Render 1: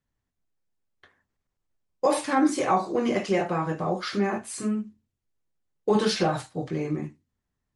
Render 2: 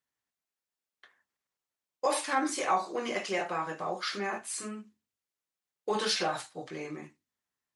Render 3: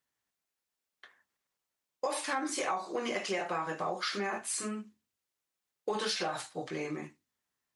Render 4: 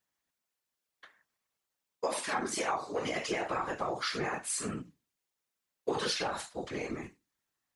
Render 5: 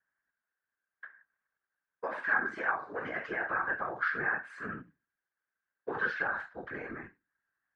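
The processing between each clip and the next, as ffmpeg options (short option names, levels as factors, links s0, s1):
-af "highpass=f=1100:p=1"
-af "acompressor=threshold=0.0224:ratio=6,volume=1.41"
-af "afftfilt=real='hypot(re,im)*cos(2*PI*random(0))':imag='hypot(re,im)*sin(2*PI*random(1))':win_size=512:overlap=0.75,volume=2.11"
-af "lowpass=f=1600:t=q:w=10,volume=0.501"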